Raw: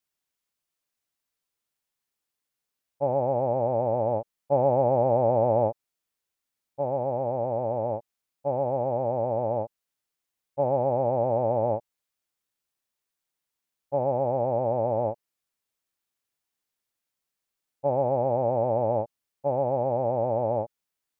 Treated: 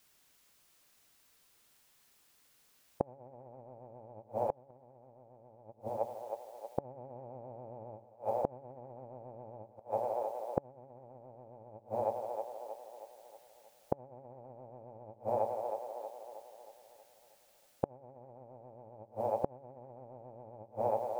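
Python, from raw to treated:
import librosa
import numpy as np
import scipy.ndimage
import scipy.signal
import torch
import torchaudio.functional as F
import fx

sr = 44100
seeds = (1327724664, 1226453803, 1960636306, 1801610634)

p1 = fx.dynamic_eq(x, sr, hz=610.0, q=1.4, threshold_db=-32.0, ratio=4.0, max_db=-4)
p2 = fx.over_compress(p1, sr, threshold_db=-31.0, ratio=-0.5)
p3 = p2 + fx.echo_split(p2, sr, split_hz=460.0, low_ms=86, high_ms=317, feedback_pct=52, wet_db=-12.5, dry=0)
p4 = fx.gate_flip(p3, sr, shuts_db=-31.0, range_db=-33)
y = F.gain(torch.from_numpy(p4), 13.0).numpy()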